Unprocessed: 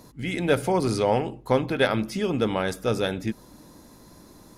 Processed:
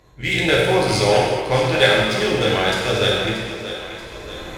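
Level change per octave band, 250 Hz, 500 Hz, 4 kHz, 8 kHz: +2.0, +6.5, +14.5, +10.0 decibels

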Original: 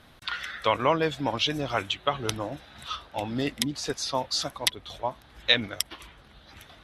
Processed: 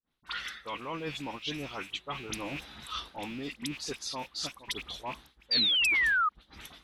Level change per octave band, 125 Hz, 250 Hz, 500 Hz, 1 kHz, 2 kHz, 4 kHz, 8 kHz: −10.0, −7.5, −13.0, −6.5, +2.5, −2.0, −7.0 decibels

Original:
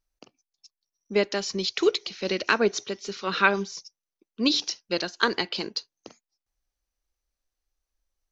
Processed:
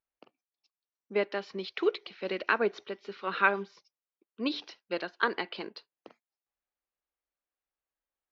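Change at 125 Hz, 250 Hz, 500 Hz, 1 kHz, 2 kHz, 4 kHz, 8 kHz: −10.0 dB, −8.0 dB, −5.5 dB, −3.5 dB, −4.0 dB, −12.5 dB, can't be measured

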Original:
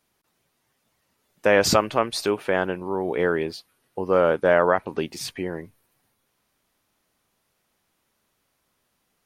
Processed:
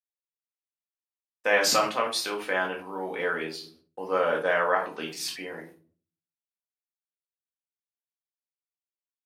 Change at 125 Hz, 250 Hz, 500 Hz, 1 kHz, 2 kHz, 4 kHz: −14.0, −10.0, −7.0, −2.5, −0.5, 0.0 decibels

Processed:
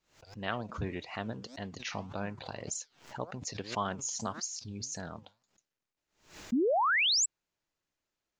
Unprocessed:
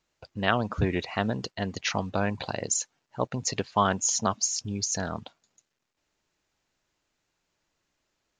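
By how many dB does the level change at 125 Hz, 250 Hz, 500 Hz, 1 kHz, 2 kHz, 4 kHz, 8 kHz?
−10.0, −6.0, −4.5, −5.0, −1.0, +0.5, −6.5 decibels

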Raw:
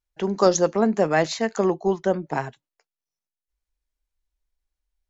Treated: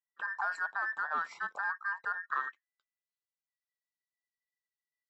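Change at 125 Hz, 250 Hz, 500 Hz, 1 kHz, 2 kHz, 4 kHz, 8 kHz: below −40 dB, below −35 dB, −33.5 dB, −8.0 dB, +0.5 dB, −23.0 dB, can't be measured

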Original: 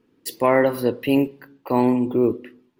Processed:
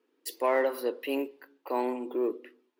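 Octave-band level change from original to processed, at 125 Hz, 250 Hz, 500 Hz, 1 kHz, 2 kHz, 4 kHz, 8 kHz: below −35 dB, −14.5 dB, −8.5 dB, −8.0 dB, −8.0 dB, −7.5 dB, can't be measured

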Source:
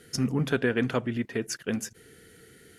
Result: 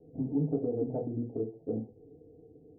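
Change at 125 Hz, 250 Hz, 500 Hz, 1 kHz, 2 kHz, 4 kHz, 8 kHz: −5.0 dB, −4.0 dB, −3.5 dB, −11.5 dB, below −40 dB, below −40 dB, below −40 dB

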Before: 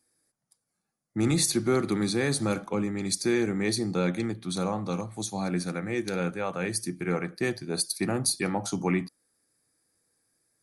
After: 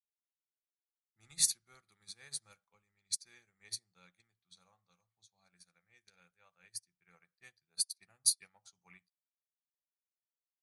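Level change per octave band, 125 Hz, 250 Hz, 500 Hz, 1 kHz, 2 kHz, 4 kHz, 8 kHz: −36.0 dB, below −40 dB, below −40 dB, −34.0 dB, −25.0 dB, −7.5 dB, −4.5 dB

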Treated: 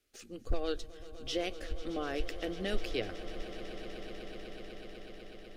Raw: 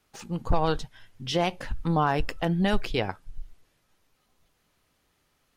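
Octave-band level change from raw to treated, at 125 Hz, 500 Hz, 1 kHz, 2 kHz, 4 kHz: −16.5, −7.0, −16.5, −8.5, −6.0 decibels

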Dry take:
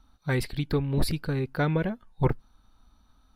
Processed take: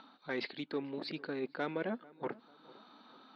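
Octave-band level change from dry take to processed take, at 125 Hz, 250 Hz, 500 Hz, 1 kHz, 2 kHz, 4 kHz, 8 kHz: −25.5 dB, −10.5 dB, −8.0 dB, −8.5 dB, −7.0 dB, −6.5 dB, below −25 dB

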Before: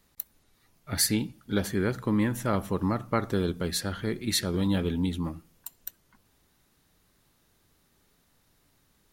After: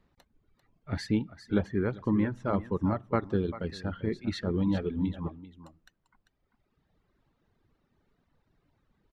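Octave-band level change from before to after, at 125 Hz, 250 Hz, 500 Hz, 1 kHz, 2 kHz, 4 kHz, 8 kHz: −1.5 dB, −1.0 dB, −1.0 dB, −3.0 dB, −5.5 dB, −12.5 dB, below −20 dB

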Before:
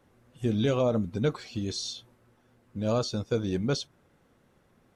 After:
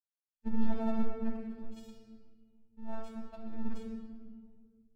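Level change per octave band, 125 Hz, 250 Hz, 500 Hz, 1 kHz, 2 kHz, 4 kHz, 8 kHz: −18.5 dB, −6.0 dB, −16.0 dB, −7.0 dB, −13.5 dB, −26.0 dB, below −25 dB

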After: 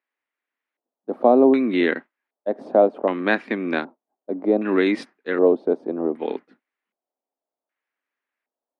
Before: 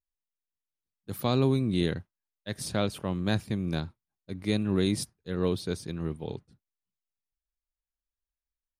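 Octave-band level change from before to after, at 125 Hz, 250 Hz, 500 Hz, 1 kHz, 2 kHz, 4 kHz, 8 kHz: −11.0 dB, +7.5 dB, +13.5 dB, +13.0 dB, +13.5 dB, −1.5 dB, below −15 dB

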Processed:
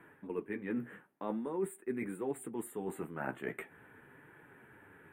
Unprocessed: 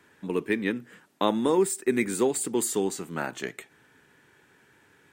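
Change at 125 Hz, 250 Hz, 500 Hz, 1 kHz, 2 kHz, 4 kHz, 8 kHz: −9.0 dB, −11.0 dB, −12.5 dB, −12.0 dB, −11.0 dB, below −25 dB, −21.5 dB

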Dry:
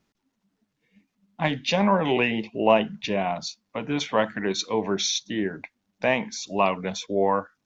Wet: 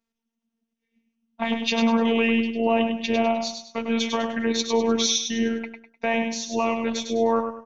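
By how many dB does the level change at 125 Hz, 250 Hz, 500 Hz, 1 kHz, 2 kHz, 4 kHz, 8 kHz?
−7.0 dB, +4.5 dB, +0.5 dB, −1.5 dB, 0.0 dB, +2.5 dB, can't be measured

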